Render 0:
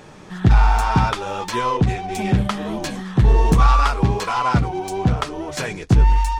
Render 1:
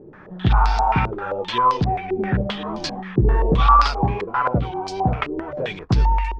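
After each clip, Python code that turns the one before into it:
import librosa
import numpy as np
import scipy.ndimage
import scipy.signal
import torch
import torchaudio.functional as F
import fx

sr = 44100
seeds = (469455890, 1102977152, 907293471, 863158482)

y = fx.filter_held_lowpass(x, sr, hz=7.6, low_hz=380.0, high_hz=4800.0)
y = F.gain(torch.from_numpy(y), -4.0).numpy()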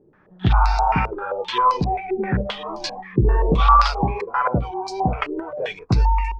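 y = fx.noise_reduce_blind(x, sr, reduce_db=13)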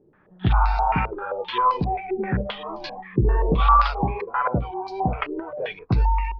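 y = scipy.signal.sosfilt(scipy.signal.butter(4, 3800.0, 'lowpass', fs=sr, output='sos'), x)
y = F.gain(torch.from_numpy(y), -2.5).numpy()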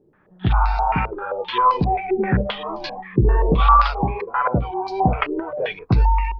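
y = fx.rider(x, sr, range_db=10, speed_s=2.0)
y = F.gain(torch.from_numpy(y), 2.0).numpy()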